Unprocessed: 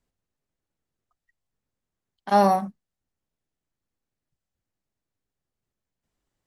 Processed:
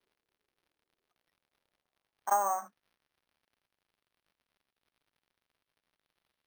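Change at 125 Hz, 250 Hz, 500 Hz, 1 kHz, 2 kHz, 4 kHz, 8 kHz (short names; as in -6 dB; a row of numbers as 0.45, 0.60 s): n/a, -31.5 dB, -15.5 dB, -8.5 dB, -9.5 dB, under -20 dB, +6.0 dB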